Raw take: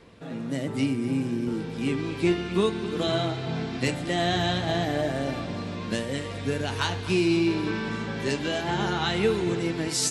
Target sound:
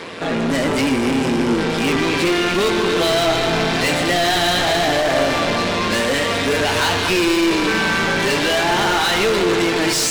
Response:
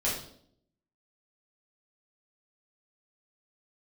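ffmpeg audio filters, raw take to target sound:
-filter_complex "[0:a]tremolo=f=170:d=0.71,asplit=2[a][b];[b]highpass=f=720:p=1,volume=33dB,asoftclip=type=tanh:threshold=-13dB[c];[a][c]amix=inputs=2:normalize=0,lowpass=f=6k:p=1,volume=-6dB,asplit=2[d][e];[1:a]atrim=start_sample=2205,adelay=126[f];[e][f]afir=irnorm=-1:irlink=0,volume=-17.5dB[g];[d][g]amix=inputs=2:normalize=0,volume=2.5dB"

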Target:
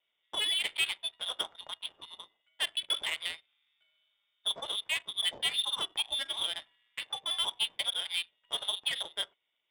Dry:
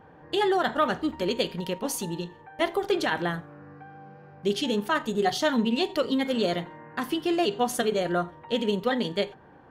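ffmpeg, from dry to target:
-af "lowpass=f=3.2k:t=q:w=0.5098,lowpass=f=3.2k:t=q:w=0.6013,lowpass=f=3.2k:t=q:w=0.9,lowpass=f=3.2k:t=q:w=2.563,afreqshift=-3800,adynamicsmooth=sensitivity=2.5:basefreq=790,volume=-6.5dB"

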